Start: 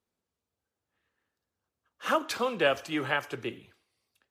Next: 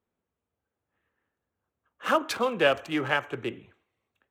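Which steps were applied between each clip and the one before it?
local Wiener filter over 9 samples; trim +3 dB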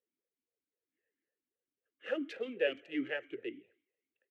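talking filter e-i 3.8 Hz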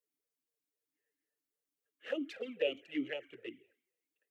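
treble shelf 5.1 kHz +8 dB; touch-sensitive flanger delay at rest 6.8 ms, full sweep at -32 dBFS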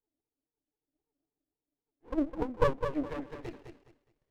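low-pass sweep 340 Hz -> 4.9 kHz, 2.25–4.12 s; thinning echo 208 ms, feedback 28%, high-pass 240 Hz, level -6.5 dB; sliding maximum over 33 samples; trim +3.5 dB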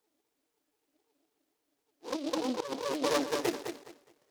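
compressor with a negative ratio -38 dBFS, ratio -1; high-pass 350 Hz 12 dB/octave; delay time shaken by noise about 3.7 kHz, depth 0.073 ms; trim +9 dB

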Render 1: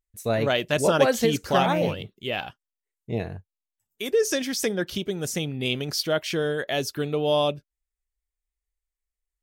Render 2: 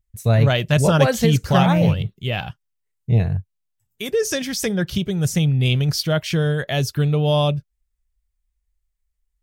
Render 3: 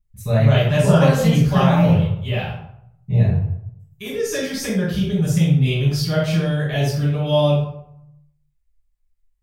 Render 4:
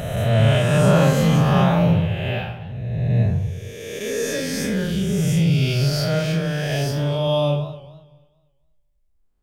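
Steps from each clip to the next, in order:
resonant low shelf 200 Hz +11 dB, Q 1.5; trim +3 dB
reverberation RT60 0.75 s, pre-delay 5 ms, DRR -8.5 dB; trim -15.5 dB
reverse spectral sustain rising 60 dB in 1.84 s; modulated delay 242 ms, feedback 31%, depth 134 cents, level -18 dB; trim -4.5 dB

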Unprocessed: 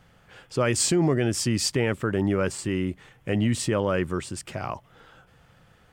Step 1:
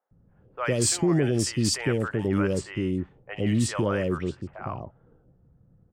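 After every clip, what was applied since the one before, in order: level-controlled noise filter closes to 320 Hz, open at -20.5 dBFS; three bands offset in time mids, highs, lows 60/110 ms, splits 670/2800 Hz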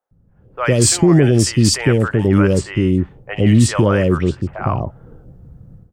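bass shelf 130 Hz +7 dB; level rider gain up to 15 dB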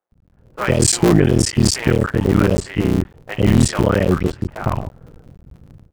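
cycle switcher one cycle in 3, muted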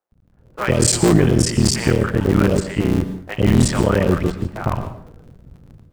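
plate-style reverb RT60 0.53 s, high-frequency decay 0.75×, pre-delay 105 ms, DRR 11 dB; trim -1 dB

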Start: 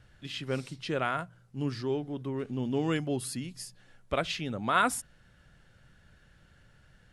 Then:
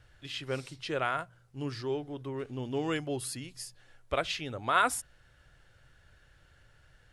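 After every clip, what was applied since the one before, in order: peaking EQ 200 Hz -14 dB 0.65 oct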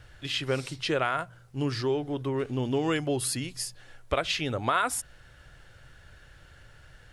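compression 4:1, threshold -32 dBFS, peak gain reduction 10 dB; trim +8.5 dB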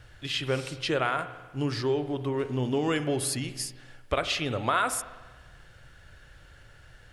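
spring tank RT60 1.3 s, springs 47 ms, chirp 70 ms, DRR 11 dB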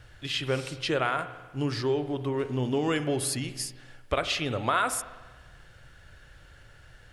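no audible change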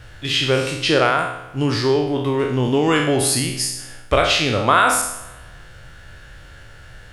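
spectral sustain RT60 0.72 s; trim +8.5 dB

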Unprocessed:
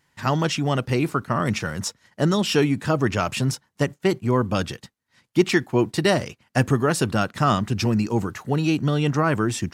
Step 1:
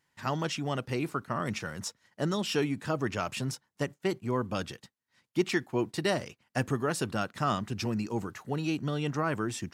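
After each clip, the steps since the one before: bass shelf 140 Hz -5.5 dB; trim -8.5 dB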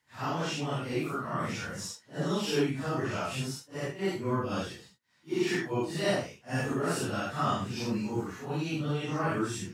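phase randomisation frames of 200 ms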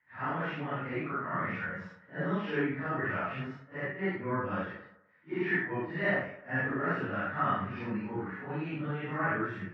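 four-pole ladder low-pass 2.1 kHz, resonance 60%; on a send at -7.5 dB: reverberation RT60 0.95 s, pre-delay 3 ms; on the sum: trim +6.5 dB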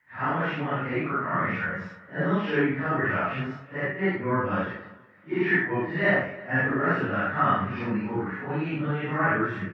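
feedback delay 328 ms, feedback 30%, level -23 dB; trim +7 dB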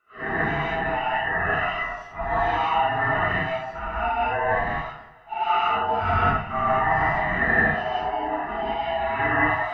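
split-band scrambler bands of 500 Hz; gated-style reverb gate 210 ms rising, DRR -5 dB; trim -3 dB

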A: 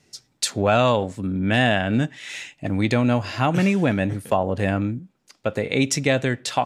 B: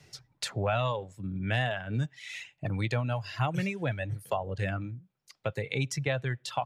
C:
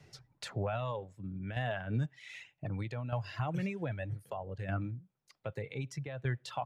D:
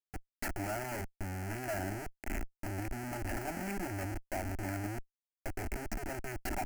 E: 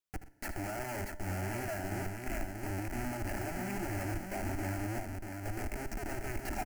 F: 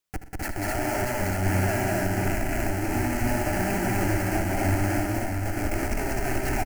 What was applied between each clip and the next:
reverb removal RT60 1.7 s; ten-band graphic EQ 125 Hz +8 dB, 250 Hz -11 dB, 8 kHz -5 dB; three bands compressed up and down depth 40%; trim -8 dB
peak limiter -23 dBFS, peak gain reduction 7.5 dB; treble shelf 2.5 kHz -9 dB; tremolo saw down 0.64 Hz, depth 60%
Schmitt trigger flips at -42 dBFS; static phaser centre 730 Hz, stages 8; trim +5.5 dB
peak limiter -31.5 dBFS, peak gain reduction 7.5 dB; multi-tap echo 77/122/636 ms -12/-20/-4.5 dB; on a send at -18 dB: reverberation RT60 2.0 s, pre-delay 3 ms; on the sum: trim +2 dB
loudspeakers at several distances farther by 66 m -2 dB, 88 m -1 dB; trim +8 dB

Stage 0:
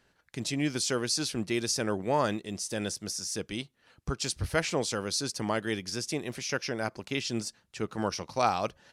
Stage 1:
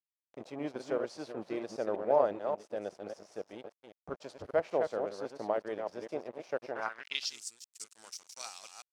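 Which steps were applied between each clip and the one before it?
chunks repeated in reverse 196 ms, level -5 dB; crossover distortion -39 dBFS; band-pass sweep 600 Hz -> 7.7 kHz, 6.68–7.39 s; trim +4.5 dB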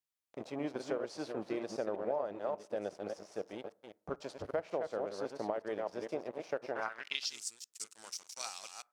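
compression 6:1, threshold -34 dBFS, peak gain reduction 13 dB; on a send at -21.5 dB: reverberation, pre-delay 5 ms; on the sum: trim +2 dB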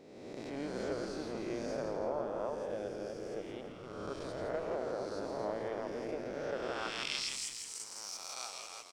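reverse spectral sustain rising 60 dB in 1.57 s; on a send: frequency-shifting echo 165 ms, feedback 48%, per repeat -94 Hz, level -6 dB; on the sum: trim -5 dB

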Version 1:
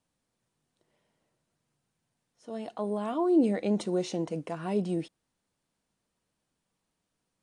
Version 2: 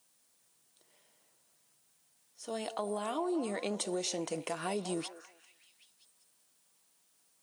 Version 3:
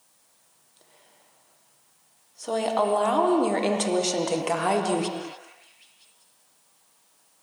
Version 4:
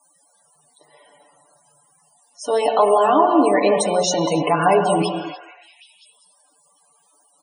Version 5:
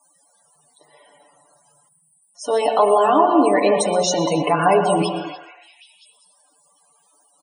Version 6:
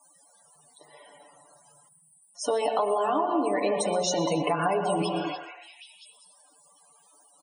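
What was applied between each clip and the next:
RIAA curve recording; compression 6:1, threshold -36 dBFS, peak gain reduction 12 dB; repeats whose band climbs or falls 194 ms, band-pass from 630 Hz, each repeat 0.7 oct, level -9 dB; trim +4 dB
peaking EQ 880 Hz +6 dB 1.3 oct; on a send at -3 dB: reverberation, pre-delay 3 ms; on the sum: trim +7.5 dB
loudest bins only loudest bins 64; comb 6.9 ms, depth 83%; trim +6.5 dB
time-frequency box 1.89–2.35 s, 230–7700 Hz -23 dB; delay 121 ms -18.5 dB
compression 6:1, threshold -23 dBFS, peak gain reduction 12.5 dB

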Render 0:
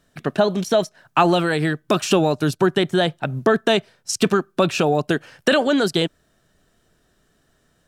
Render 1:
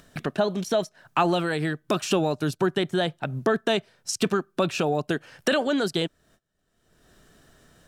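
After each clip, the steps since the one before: gate -56 dBFS, range -28 dB; upward compressor, threshold -19 dBFS; trim -6 dB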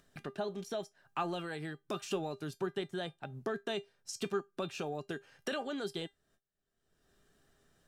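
feedback comb 400 Hz, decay 0.17 s, harmonics all, mix 70%; trim -5.5 dB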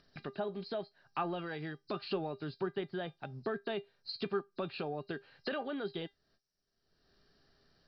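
knee-point frequency compression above 3.8 kHz 4:1; low-pass that closes with the level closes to 2.7 kHz, closed at -34 dBFS

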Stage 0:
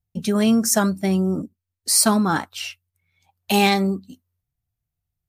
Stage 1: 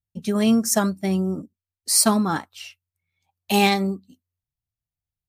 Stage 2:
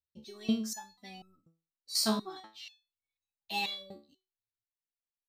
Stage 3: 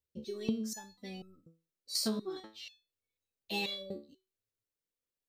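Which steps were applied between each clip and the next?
band-stop 1.5 kHz, Q 14; upward expansion 1.5:1, over -33 dBFS
fifteen-band graphic EQ 160 Hz -6 dB, 4 kHz +11 dB, 10 kHz -10 dB; resonator arpeggio 4.1 Hz 72–1300 Hz; trim -3.5 dB
resonant low shelf 620 Hz +6 dB, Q 3; compression 8:1, threshold -30 dBFS, peak gain reduction 12.5 dB

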